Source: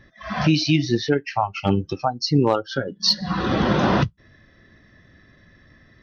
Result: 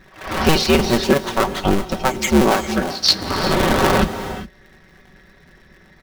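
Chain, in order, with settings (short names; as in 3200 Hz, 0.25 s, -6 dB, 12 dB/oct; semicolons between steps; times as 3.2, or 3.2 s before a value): cycle switcher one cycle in 2, inverted; comb 5.3 ms, depth 53%; on a send: reverse echo 0.134 s -17.5 dB; on the sum: non-linear reverb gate 0.43 s rising, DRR 11.5 dB; gain +2.5 dB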